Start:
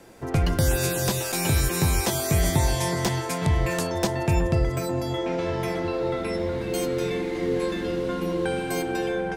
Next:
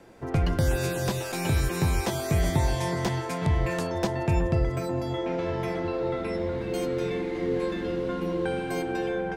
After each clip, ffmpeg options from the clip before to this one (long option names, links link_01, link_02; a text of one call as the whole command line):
ffmpeg -i in.wav -af "highshelf=frequency=5100:gain=-10.5,volume=-2dB" out.wav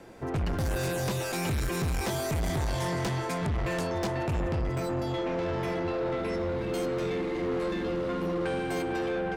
ffmpeg -i in.wav -af "asoftclip=type=tanh:threshold=-28.5dB,volume=2.5dB" out.wav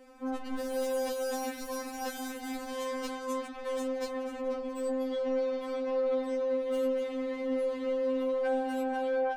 ffmpeg -i in.wav -af "afftfilt=real='re*3.46*eq(mod(b,12),0)':imag='im*3.46*eq(mod(b,12),0)':win_size=2048:overlap=0.75,volume=-3dB" out.wav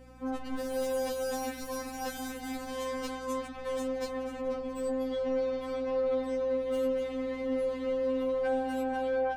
ffmpeg -i in.wav -af "aeval=exprs='val(0)+0.002*(sin(2*PI*60*n/s)+sin(2*PI*2*60*n/s)/2+sin(2*PI*3*60*n/s)/3+sin(2*PI*4*60*n/s)/4+sin(2*PI*5*60*n/s)/5)':channel_layout=same" out.wav